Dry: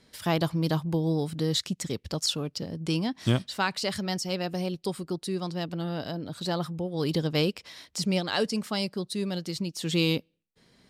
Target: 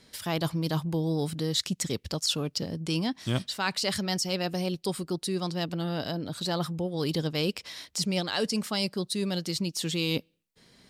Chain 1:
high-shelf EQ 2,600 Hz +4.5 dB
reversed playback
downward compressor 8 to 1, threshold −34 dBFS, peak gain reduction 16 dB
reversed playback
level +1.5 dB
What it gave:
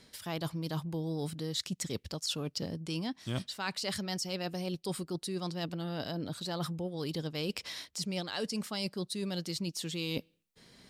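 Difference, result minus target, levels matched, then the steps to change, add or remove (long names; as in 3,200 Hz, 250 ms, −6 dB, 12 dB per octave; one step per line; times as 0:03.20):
downward compressor: peak gain reduction +7.5 dB
change: downward compressor 8 to 1, threshold −25.5 dBFS, peak gain reduction 8.5 dB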